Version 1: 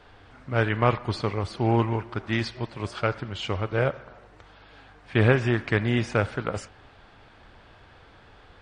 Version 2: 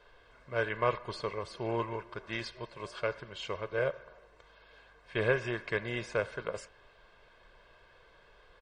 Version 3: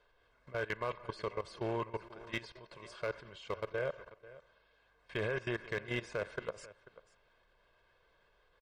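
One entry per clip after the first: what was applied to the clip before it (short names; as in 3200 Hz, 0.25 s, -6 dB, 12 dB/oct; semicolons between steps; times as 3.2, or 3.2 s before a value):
bell 90 Hz -14.5 dB 1.2 oct; comb 1.9 ms, depth 67%; gain -8.5 dB
level quantiser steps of 18 dB; echo 0.49 s -18.5 dB; overloaded stage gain 28 dB; gain +1.5 dB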